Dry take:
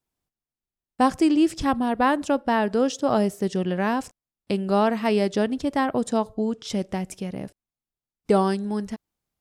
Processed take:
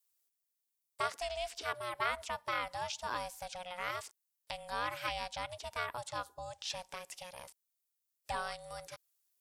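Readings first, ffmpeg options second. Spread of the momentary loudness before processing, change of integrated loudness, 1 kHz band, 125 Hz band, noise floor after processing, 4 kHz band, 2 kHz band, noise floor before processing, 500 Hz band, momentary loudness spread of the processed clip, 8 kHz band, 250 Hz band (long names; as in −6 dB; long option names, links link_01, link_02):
10 LU, −16.0 dB, −12.5 dB, −21.5 dB, −85 dBFS, −6.0 dB, −7.5 dB, below −85 dBFS, −19.0 dB, 11 LU, −8.0 dB, −36.5 dB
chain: -filter_complex "[0:a]aeval=exprs='val(0)*sin(2*PI*360*n/s)':channel_layout=same,acrossover=split=4200[link_01][link_02];[link_02]acompressor=threshold=-58dB:ratio=4:attack=1:release=60[link_03];[link_01][link_03]amix=inputs=2:normalize=0,asubboost=boost=10.5:cutoff=62,asplit=2[link_04][link_05];[link_05]acompressor=threshold=-28dB:ratio=6,volume=-1dB[link_06];[link_04][link_06]amix=inputs=2:normalize=0,aderivative,volume=4dB"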